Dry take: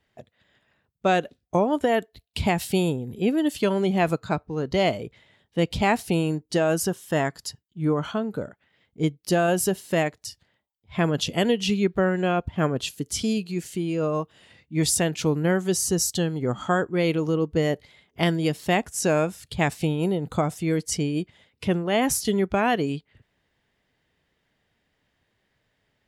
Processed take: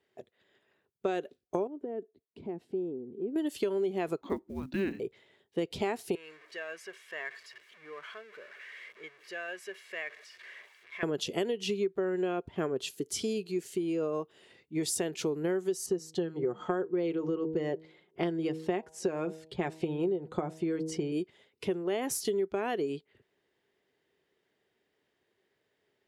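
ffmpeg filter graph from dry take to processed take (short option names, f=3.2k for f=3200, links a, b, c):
-filter_complex "[0:a]asettb=1/sr,asplit=3[a][b][c];[a]atrim=end=1.674[d];[b]atrim=start=1.67:end=3.36,asetpts=PTS-STARTPTS,afade=t=in:d=0.004:c=qsin,afade=t=out:st=1.686:d=0.004:c=qsin,bandpass=f=270:t=q:w=1.6,acompressor=threshold=-35dB:ratio=2:attack=3.2:release=140:knee=1:detection=peak[e];[c]atrim=start=3.356[f];[d][e]acrossfade=d=0.004:c1=hsin:c2=qsin[g];[g][f]acrossfade=d=0.004:c1=qsin:c2=hsin,asettb=1/sr,asplit=3[h][i][j];[h]atrim=end=4.214[k];[i]atrim=start=4.21:end=5,asetpts=PTS-STARTPTS,afade=t=in:d=0.004:c=qsin,afade=t=out:st=0.786:d=0.004:c=qsin,lowpass=3.2k,afreqshift=-390,acrusher=bits=9:mode=log:mix=0:aa=0.000001[l];[j]atrim=start=4.996[m];[k][l]acrossfade=d=0.004:c1=hsin:c2=qsin[n];[n][m]acrossfade=d=0.004:c1=qsin:c2=hsin,asettb=1/sr,asplit=3[o][p][q];[o]atrim=end=6.154[r];[p]atrim=start=6.15:end=11.03,asetpts=PTS-STARTPTS,afade=t=in:d=0.004:c=qsin,afade=t=out:st=4.876:d=0.004:c=qsin,aeval=exprs='val(0)+0.5*0.0299*sgn(val(0))':c=same,bandpass=f=2k:t=q:w=3.3,aecho=1:1:1.8:0.46,atrim=end_sample=215208[s];[q]atrim=start=11.026[t];[r][s]acrossfade=d=0.004:c1=hsin:c2=qsin[u];[u][t]acrossfade=d=0.004:c1=qsin:c2=hsin,asettb=1/sr,asplit=3[v][w][x];[v]atrim=end=15.864[y];[w]atrim=start=15.86:end=21.12,asetpts=PTS-STARTPTS,afade=t=in:d=0.004:c=qsin,afade=t=out:st=5.256:d=0.004:c=qsin,aemphasis=mode=reproduction:type=75fm,aecho=1:1:5.6:0.43,atrim=end_sample=231966,bandreject=f=159:t=h:w=4,bandreject=f=318:t=h:w=4,bandreject=f=477:t=h:w=4,bandreject=f=636:t=h:w=4,bandreject=f=795:t=h:w=4,bandreject=f=954:t=h:w=4[z];[x]atrim=start=21.116[aa];[y][z]acrossfade=d=0.004:c1=hsin:c2=qsin[ab];[ab][aa]acrossfade=d=0.004:c1=qsin:c2=hsin,highpass=f=270:p=1,equalizer=f=390:t=o:w=0.53:g=13.5,acompressor=threshold=-22dB:ratio=6,volume=-6dB"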